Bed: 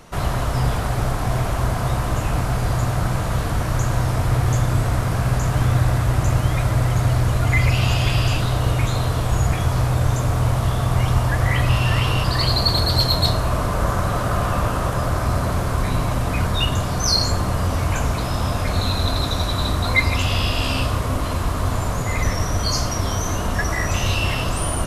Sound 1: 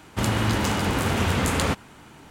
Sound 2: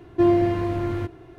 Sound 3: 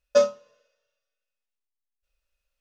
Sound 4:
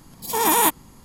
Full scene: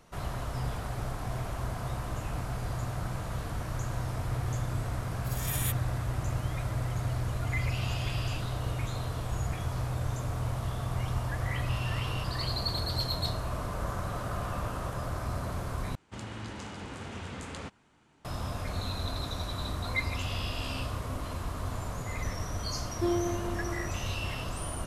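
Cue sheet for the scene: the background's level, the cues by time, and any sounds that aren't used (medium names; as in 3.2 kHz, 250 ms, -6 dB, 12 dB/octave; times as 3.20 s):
bed -13.5 dB
5.02 s: add 4 -14 dB + steep high-pass 1.6 kHz
15.95 s: replace with 1 -17.5 dB + low-pass 9 kHz 24 dB/octave
22.83 s: add 2 -11.5 dB
not used: 3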